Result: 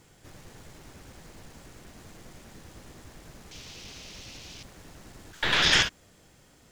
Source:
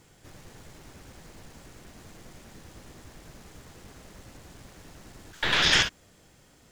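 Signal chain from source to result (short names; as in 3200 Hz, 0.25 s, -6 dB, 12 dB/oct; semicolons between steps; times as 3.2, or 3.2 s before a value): 3.51–4.63 band shelf 3800 Hz +13 dB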